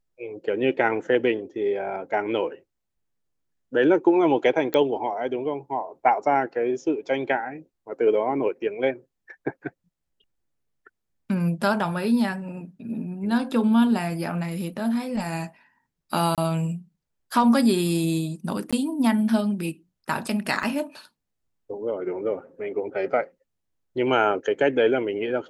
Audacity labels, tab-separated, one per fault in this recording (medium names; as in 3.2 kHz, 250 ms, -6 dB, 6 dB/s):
4.740000	4.740000	pop -11 dBFS
16.350000	16.380000	dropout 27 ms
18.710000	18.730000	dropout 16 ms
20.630000	20.630000	dropout 2.3 ms